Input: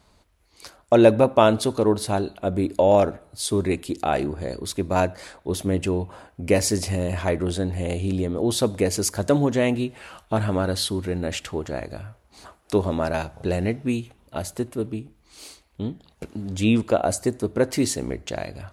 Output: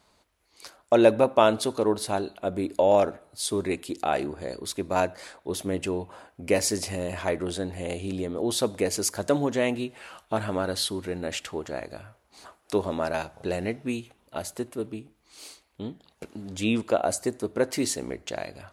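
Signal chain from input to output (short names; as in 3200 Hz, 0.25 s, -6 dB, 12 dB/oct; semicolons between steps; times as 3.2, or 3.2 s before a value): low shelf 170 Hz -12 dB; gain -2 dB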